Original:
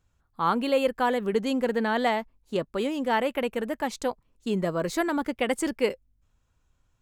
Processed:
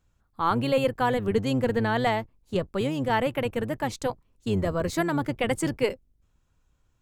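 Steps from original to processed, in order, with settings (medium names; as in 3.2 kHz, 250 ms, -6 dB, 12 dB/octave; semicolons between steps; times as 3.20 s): octave divider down 1 oct, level -2 dB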